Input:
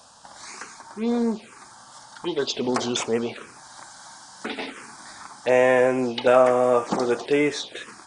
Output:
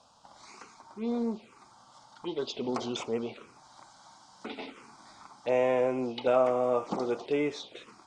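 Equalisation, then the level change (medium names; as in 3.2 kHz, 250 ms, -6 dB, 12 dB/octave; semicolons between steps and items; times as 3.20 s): distance through air 97 m; peaking EQ 1.7 kHz -13 dB 0.3 oct; -7.5 dB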